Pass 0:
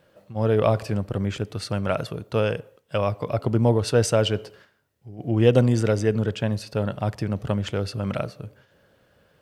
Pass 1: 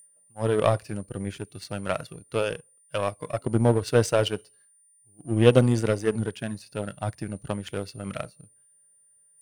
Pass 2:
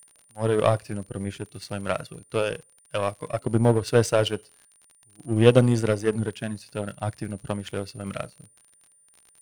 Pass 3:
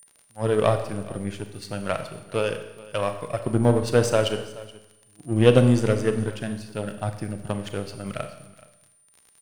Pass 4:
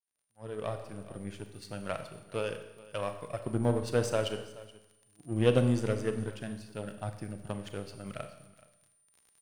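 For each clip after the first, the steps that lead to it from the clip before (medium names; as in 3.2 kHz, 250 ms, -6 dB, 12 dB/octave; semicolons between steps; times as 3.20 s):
whistle 9.2 kHz -32 dBFS; spectral noise reduction 12 dB; power-law waveshaper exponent 1.4; trim +2.5 dB
crackle 48 per s -39 dBFS; trim +1 dB
delay 425 ms -20 dB; Schroeder reverb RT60 0.95 s, combs from 29 ms, DRR 8 dB
fade-in on the opening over 1.44 s; trim -9 dB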